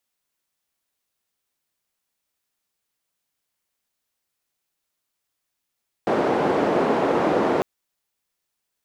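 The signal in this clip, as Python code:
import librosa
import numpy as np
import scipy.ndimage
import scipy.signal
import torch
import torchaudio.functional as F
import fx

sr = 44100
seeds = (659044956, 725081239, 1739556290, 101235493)

y = fx.band_noise(sr, seeds[0], length_s=1.55, low_hz=330.0, high_hz=480.0, level_db=-20.5)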